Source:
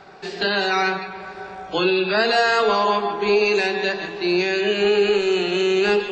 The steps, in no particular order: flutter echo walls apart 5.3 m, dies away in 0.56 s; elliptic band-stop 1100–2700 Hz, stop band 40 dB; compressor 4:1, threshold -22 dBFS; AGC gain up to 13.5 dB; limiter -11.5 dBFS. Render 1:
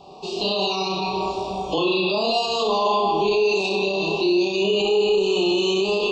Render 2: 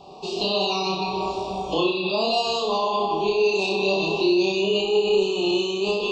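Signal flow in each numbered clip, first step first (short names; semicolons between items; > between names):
compressor > flutter echo > AGC > limiter > elliptic band-stop; elliptic band-stop > AGC > limiter > compressor > flutter echo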